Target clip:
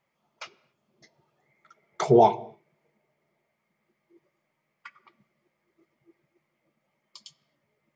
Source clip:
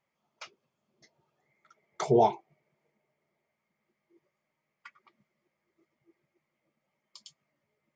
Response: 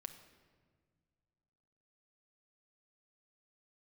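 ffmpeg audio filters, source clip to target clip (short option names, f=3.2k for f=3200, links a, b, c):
-filter_complex "[0:a]asplit=2[a][b];[1:a]atrim=start_sample=2205,afade=t=out:st=0.33:d=0.01,atrim=end_sample=14994,lowpass=5.6k[c];[b][c]afir=irnorm=-1:irlink=0,volume=-3.5dB[d];[a][d]amix=inputs=2:normalize=0,volume=2.5dB"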